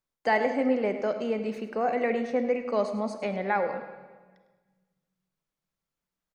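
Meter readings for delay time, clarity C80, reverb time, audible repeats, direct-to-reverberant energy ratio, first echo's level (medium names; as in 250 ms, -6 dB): 103 ms, 9.0 dB, 1.4 s, 1, 7.5 dB, -14.0 dB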